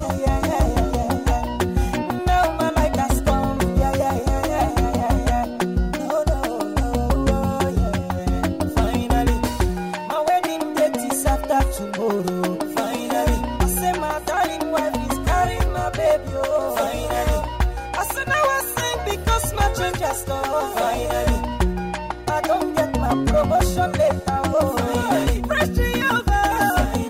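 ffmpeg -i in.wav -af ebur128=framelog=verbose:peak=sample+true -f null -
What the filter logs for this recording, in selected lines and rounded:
Integrated loudness:
  I:         -21.3 LUFS
  Threshold: -31.3 LUFS
Loudness range:
  LRA:         2.2 LU
  Threshold: -41.5 LUFS
  LRA low:   -22.2 LUFS
  LRA high:  -20.1 LUFS
Sample peak:
  Peak:       -9.7 dBFS
True peak:
  Peak:       -9.5 dBFS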